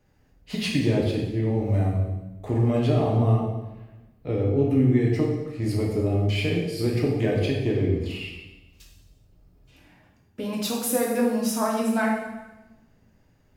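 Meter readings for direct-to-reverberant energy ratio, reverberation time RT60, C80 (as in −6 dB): −3.0 dB, 1.0 s, 5.0 dB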